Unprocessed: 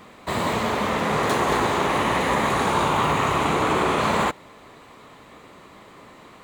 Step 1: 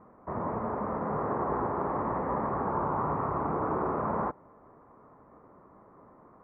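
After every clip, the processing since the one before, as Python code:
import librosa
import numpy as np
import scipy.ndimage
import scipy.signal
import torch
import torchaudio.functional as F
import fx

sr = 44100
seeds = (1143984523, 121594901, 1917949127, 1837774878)

y = scipy.signal.sosfilt(scipy.signal.cheby2(4, 50, 3300.0, 'lowpass', fs=sr, output='sos'), x)
y = y * 10.0 ** (-8.0 / 20.0)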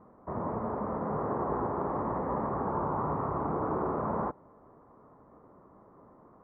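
y = fx.high_shelf(x, sr, hz=2100.0, db=-12.0)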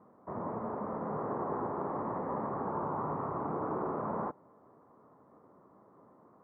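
y = scipy.signal.sosfilt(scipy.signal.butter(2, 120.0, 'highpass', fs=sr, output='sos'), x)
y = y * 10.0 ** (-3.5 / 20.0)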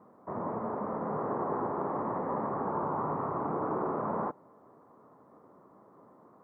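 y = fx.low_shelf(x, sr, hz=71.0, db=-8.5)
y = y * 10.0 ** (3.0 / 20.0)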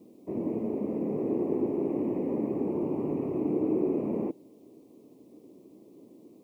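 y = fx.curve_eq(x, sr, hz=(160.0, 320.0, 1500.0, 2500.0), db=(0, 11, -28, 14))
y = y * 10.0 ** (1.0 / 20.0)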